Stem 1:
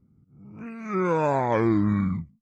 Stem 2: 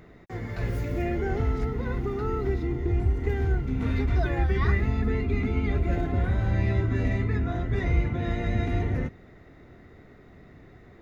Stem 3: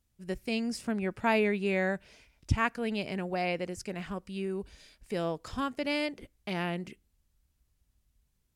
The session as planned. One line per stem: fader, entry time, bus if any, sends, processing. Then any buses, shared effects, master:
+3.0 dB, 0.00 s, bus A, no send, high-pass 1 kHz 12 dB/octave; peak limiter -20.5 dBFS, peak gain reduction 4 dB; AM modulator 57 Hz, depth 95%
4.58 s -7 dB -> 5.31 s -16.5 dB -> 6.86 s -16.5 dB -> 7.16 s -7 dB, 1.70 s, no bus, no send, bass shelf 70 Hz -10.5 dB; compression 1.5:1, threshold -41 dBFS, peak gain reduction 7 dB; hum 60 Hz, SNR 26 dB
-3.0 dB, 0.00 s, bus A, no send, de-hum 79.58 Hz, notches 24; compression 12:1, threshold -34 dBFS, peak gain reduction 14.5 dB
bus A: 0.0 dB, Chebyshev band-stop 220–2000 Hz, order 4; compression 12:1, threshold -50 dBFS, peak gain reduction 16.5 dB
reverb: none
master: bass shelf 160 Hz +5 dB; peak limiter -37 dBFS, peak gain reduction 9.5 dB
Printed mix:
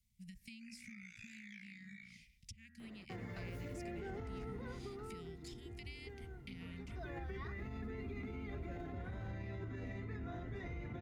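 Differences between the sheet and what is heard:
stem 2: entry 1.70 s -> 2.80 s; master: missing bass shelf 160 Hz +5 dB

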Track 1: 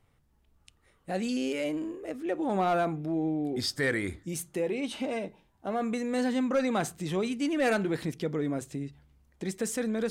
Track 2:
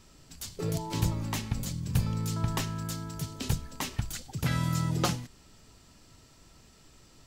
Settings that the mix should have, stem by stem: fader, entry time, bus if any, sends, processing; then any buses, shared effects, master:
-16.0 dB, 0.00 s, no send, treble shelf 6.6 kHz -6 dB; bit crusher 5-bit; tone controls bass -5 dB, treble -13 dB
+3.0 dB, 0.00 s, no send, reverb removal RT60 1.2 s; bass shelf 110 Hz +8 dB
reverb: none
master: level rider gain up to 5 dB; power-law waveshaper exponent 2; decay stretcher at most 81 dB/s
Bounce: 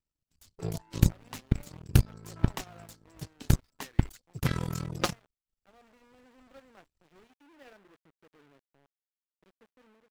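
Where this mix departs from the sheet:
stem 1 -16.0 dB -> -9.5 dB; master: missing decay stretcher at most 81 dB/s

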